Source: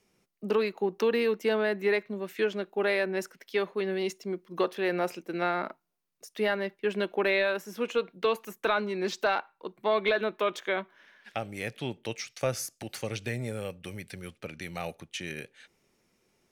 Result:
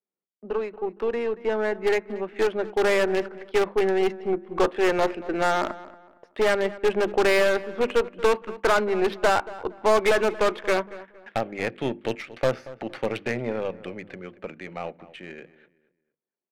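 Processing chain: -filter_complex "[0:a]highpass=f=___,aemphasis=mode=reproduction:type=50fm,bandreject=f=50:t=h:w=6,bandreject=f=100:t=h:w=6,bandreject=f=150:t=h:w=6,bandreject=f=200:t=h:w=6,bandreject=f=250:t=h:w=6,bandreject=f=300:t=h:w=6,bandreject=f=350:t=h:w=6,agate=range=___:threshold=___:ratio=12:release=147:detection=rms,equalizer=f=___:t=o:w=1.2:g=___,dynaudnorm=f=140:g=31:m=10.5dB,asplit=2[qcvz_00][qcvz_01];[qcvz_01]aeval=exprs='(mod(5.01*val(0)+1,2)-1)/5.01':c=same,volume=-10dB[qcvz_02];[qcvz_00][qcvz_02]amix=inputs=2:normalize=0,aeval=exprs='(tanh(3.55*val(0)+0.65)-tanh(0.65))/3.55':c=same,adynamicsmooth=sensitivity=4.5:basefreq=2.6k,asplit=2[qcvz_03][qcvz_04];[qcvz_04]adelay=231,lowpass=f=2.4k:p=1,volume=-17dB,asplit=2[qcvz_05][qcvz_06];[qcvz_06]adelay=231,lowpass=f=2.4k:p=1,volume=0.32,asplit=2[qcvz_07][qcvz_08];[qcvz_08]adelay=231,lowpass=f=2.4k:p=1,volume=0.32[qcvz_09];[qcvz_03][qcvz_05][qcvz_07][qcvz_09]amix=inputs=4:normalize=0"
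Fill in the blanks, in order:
230, -21dB, -55dB, 7.2k, -15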